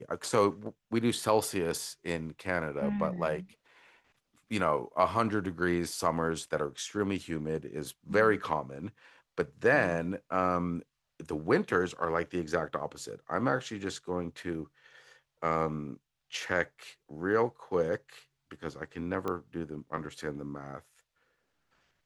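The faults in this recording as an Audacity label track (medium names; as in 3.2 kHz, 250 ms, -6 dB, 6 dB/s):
19.280000	19.280000	pop -21 dBFS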